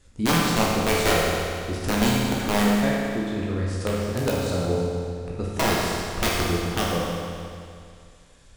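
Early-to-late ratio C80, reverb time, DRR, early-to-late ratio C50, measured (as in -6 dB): 0.0 dB, 2.3 s, -5.0 dB, -1.5 dB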